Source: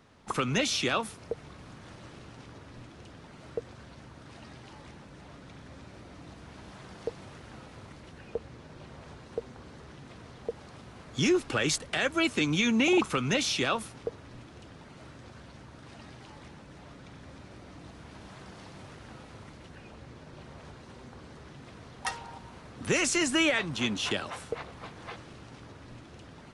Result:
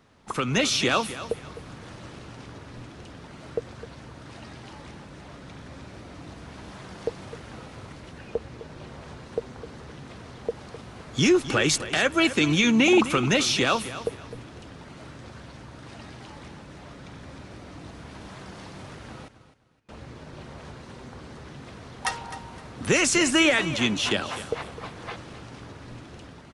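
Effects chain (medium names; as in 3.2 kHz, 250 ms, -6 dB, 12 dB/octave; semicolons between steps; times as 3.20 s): 19.28–19.89 s: gate -43 dBFS, range -33 dB; level rider gain up to 5.5 dB; feedback delay 257 ms, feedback 27%, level -14 dB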